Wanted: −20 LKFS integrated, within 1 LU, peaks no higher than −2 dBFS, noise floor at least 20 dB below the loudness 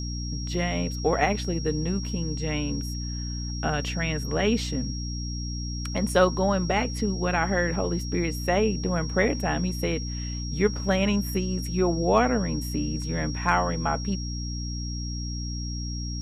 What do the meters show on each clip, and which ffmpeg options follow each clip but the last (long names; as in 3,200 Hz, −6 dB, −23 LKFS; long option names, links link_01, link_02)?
mains hum 60 Hz; hum harmonics up to 300 Hz; level of the hum −29 dBFS; interfering tone 5,600 Hz; level of the tone −37 dBFS; integrated loudness −27.0 LKFS; sample peak −7.5 dBFS; target loudness −20.0 LKFS
→ -af "bandreject=frequency=60:width_type=h:width=6,bandreject=frequency=120:width_type=h:width=6,bandreject=frequency=180:width_type=h:width=6,bandreject=frequency=240:width_type=h:width=6,bandreject=frequency=300:width_type=h:width=6"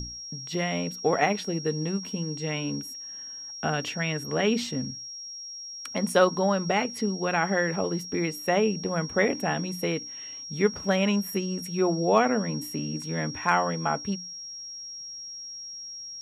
mains hum none found; interfering tone 5,600 Hz; level of the tone −37 dBFS
→ -af "bandreject=frequency=5600:width=30"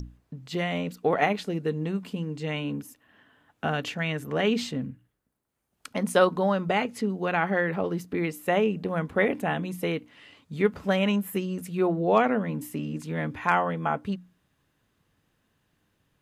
interfering tone none found; integrated loudness −27.5 LKFS; sample peak −8.0 dBFS; target loudness −20.0 LKFS
→ -af "volume=7.5dB,alimiter=limit=-2dB:level=0:latency=1"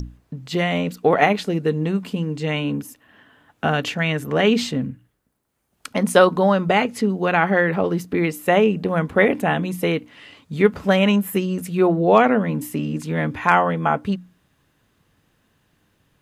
integrated loudness −20.0 LKFS; sample peak −2.0 dBFS; background noise floor −66 dBFS